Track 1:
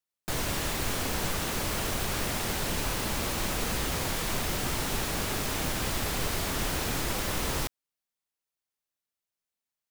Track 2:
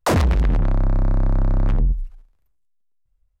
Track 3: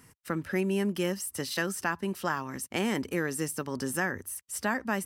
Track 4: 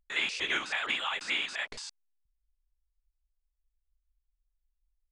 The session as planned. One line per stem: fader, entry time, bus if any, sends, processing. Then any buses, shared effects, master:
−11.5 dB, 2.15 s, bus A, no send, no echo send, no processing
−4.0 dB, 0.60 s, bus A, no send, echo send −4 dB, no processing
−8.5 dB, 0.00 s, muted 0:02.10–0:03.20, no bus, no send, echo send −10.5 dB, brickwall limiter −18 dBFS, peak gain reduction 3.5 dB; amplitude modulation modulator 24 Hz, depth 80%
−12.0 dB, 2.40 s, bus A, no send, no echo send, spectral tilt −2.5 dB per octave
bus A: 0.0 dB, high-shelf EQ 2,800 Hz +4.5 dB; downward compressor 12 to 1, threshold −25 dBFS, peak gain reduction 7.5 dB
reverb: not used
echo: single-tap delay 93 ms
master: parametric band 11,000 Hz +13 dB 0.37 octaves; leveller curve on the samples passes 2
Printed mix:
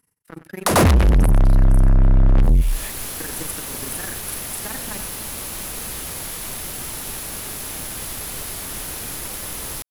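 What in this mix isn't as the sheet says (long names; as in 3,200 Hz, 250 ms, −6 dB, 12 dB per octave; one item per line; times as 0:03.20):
stem 2 −4.0 dB → +3.0 dB
stem 4: entry 2.40 s → 1.25 s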